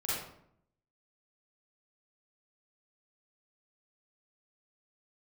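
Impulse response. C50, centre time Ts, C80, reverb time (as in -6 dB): -3.5 dB, 76 ms, 2.5 dB, 0.70 s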